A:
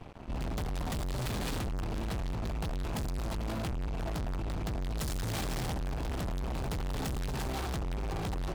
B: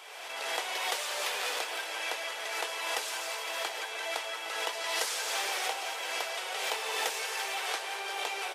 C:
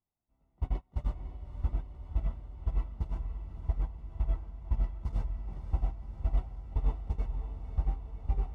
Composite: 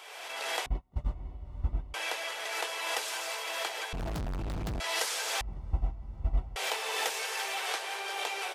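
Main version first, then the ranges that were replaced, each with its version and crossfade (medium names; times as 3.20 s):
B
0.66–1.94 s: from C
3.93–4.80 s: from A
5.41–6.56 s: from C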